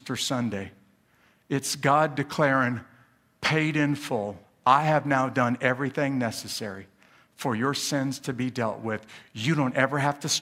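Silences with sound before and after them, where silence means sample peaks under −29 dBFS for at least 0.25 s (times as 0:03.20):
0:00.64–0:01.51
0:02.79–0:03.43
0:04.31–0:04.66
0:06.79–0:07.41
0:08.97–0:09.38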